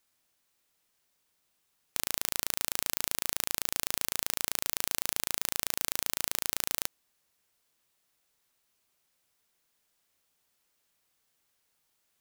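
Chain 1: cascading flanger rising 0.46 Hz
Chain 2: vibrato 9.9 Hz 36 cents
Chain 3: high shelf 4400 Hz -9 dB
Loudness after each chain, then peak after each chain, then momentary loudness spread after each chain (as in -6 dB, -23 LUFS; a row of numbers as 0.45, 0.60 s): -35.5, -31.5, -37.0 LUFS; -7.5, -1.5, -8.5 dBFS; 1, 2, 2 LU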